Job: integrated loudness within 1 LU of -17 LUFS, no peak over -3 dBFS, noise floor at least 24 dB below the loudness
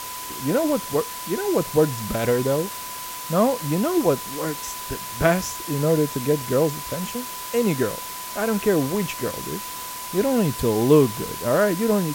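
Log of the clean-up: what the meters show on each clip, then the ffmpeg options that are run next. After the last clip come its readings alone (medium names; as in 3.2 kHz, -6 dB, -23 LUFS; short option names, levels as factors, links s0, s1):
steady tone 1 kHz; tone level -35 dBFS; noise floor -34 dBFS; noise floor target -47 dBFS; loudness -23.0 LUFS; peak level -4.0 dBFS; loudness target -17.0 LUFS
-> -af "bandreject=f=1000:w=30"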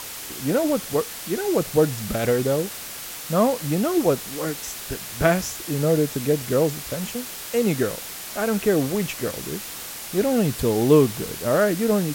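steady tone not found; noise floor -35 dBFS; noise floor target -47 dBFS
-> -af "afftdn=nr=12:nf=-35"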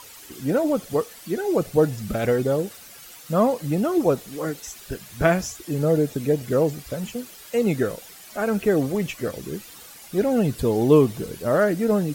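noise floor -44 dBFS; noise floor target -47 dBFS
-> -af "afftdn=nr=6:nf=-44"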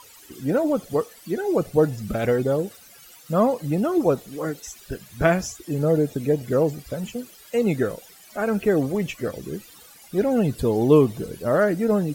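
noise floor -49 dBFS; loudness -23.0 LUFS; peak level -4.5 dBFS; loudness target -17.0 LUFS
-> -af "volume=2,alimiter=limit=0.708:level=0:latency=1"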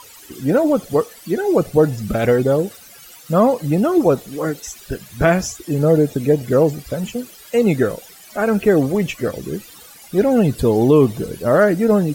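loudness -17.5 LUFS; peak level -3.0 dBFS; noise floor -43 dBFS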